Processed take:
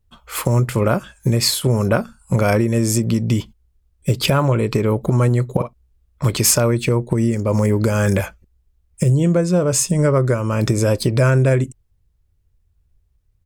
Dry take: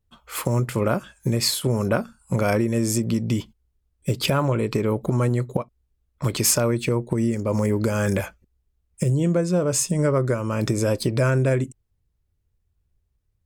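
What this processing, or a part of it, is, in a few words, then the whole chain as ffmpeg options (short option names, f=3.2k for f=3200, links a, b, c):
low shelf boost with a cut just above: -filter_complex "[0:a]asplit=3[a][b][c];[a]afade=t=out:st=5.58:d=0.02[d];[b]asplit=2[e][f];[f]adelay=48,volume=-6dB[g];[e][g]amix=inputs=2:normalize=0,afade=t=in:st=5.58:d=0.02,afade=t=out:st=6.28:d=0.02[h];[c]afade=t=in:st=6.28:d=0.02[i];[d][h][i]amix=inputs=3:normalize=0,lowshelf=f=83:g=6.5,equalizer=f=270:t=o:w=0.77:g=-2,volume=4.5dB"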